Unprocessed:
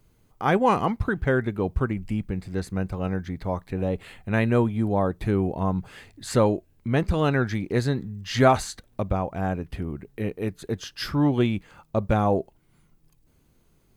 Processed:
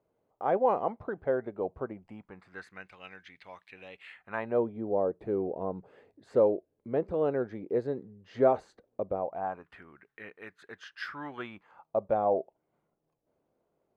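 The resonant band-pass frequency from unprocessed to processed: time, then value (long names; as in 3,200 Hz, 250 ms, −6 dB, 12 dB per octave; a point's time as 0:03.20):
resonant band-pass, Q 2.4
0:01.92 600 Hz
0:02.98 2,600 Hz
0:04.01 2,600 Hz
0:04.64 490 Hz
0:09.14 490 Hz
0:09.80 1,600 Hz
0:11.29 1,600 Hz
0:12.02 610 Hz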